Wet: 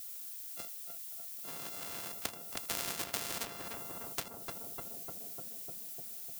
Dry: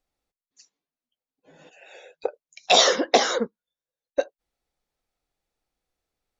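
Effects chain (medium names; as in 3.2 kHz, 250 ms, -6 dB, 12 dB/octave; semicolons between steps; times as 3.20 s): sorted samples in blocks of 64 samples; high-pass 86 Hz 12 dB/octave; peaking EQ 2 kHz -5.5 dB 0.34 oct; added noise violet -58 dBFS; compression 2:1, threshold -34 dBFS, peak gain reduction 12 dB; on a send: filtered feedback delay 300 ms, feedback 64%, low-pass 1.1 kHz, level -9 dB; on the sum: spectrum-flattening compressor 4:1; trim +1 dB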